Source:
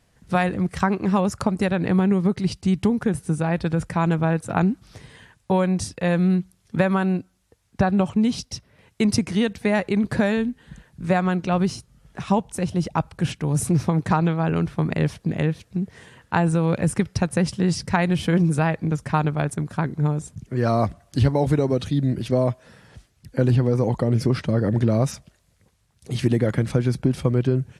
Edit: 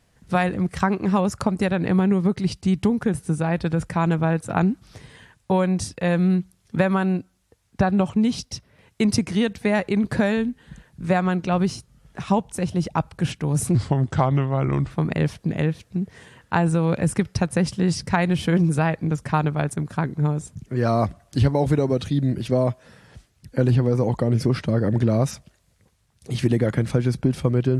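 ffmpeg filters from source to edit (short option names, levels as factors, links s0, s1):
-filter_complex "[0:a]asplit=3[s0][s1][s2];[s0]atrim=end=13.754[s3];[s1]atrim=start=13.75:end=14.71,asetpts=PTS-STARTPTS,asetrate=36603,aresample=44100,atrim=end_sample=51007,asetpts=PTS-STARTPTS[s4];[s2]atrim=start=14.706[s5];[s3][s4]acrossfade=d=0.004:c1=hsin:c2=hsin[s6];[s6][s5]acrossfade=d=0.004:c1=hsin:c2=hsin"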